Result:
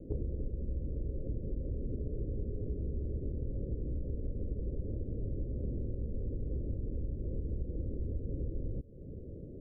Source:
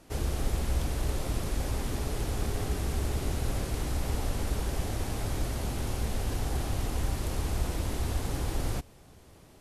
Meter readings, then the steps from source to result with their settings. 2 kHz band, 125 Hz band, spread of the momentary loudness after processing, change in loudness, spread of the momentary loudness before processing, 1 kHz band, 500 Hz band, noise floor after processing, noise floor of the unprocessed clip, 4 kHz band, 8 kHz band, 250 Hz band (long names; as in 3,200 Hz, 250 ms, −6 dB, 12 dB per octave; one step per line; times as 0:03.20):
below −40 dB, −5.0 dB, 1 LU, −6.5 dB, 2 LU, below −35 dB, −6.0 dB, −46 dBFS, −55 dBFS, below −40 dB, below −40 dB, −5.0 dB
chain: Butterworth low-pass 550 Hz 72 dB per octave
downward compressor 10 to 1, threshold −43 dBFS, peak gain reduction 20 dB
level +10.5 dB